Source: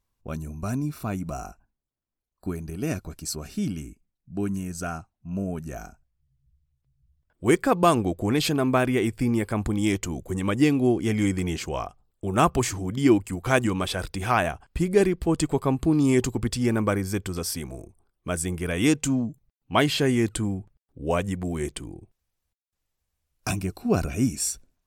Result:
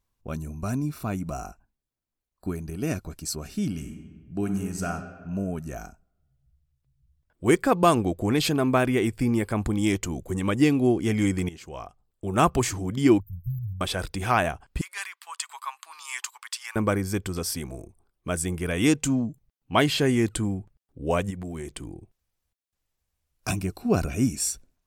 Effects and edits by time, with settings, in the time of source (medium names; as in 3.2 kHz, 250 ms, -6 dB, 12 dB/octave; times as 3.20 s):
3.67–4.90 s: reverb throw, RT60 1.6 s, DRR 5.5 dB
11.49–12.47 s: fade in, from -16.5 dB
13.20–13.81 s: brick-wall FIR band-stop 160–13000 Hz
14.81–16.76 s: elliptic high-pass 1 kHz, stop band 80 dB
21.30–23.48 s: compression 5:1, threshold -31 dBFS